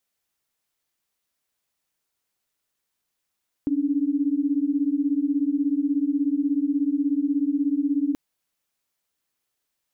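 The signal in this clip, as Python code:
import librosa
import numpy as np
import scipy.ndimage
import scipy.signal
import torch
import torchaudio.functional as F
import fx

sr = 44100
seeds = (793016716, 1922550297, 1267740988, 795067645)

y = fx.chord(sr, length_s=4.48, notes=(61, 62), wave='sine', level_db=-23.0)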